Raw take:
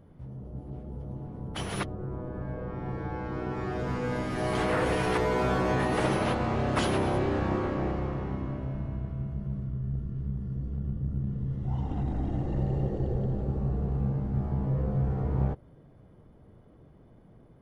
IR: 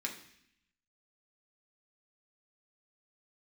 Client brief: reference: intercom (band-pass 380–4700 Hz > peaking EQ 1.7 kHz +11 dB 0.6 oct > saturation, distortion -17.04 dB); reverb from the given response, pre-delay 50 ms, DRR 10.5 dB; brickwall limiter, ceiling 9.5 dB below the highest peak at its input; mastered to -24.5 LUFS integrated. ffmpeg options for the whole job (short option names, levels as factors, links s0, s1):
-filter_complex "[0:a]alimiter=limit=0.0708:level=0:latency=1,asplit=2[s0][s1];[1:a]atrim=start_sample=2205,adelay=50[s2];[s1][s2]afir=irnorm=-1:irlink=0,volume=0.237[s3];[s0][s3]amix=inputs=2:normalize=0,highpass=380,lowpass=4700,equalizer=f=1700:t=o:w=0.6:g=11,asoftclip=threshold=0.0501,volume=3.76"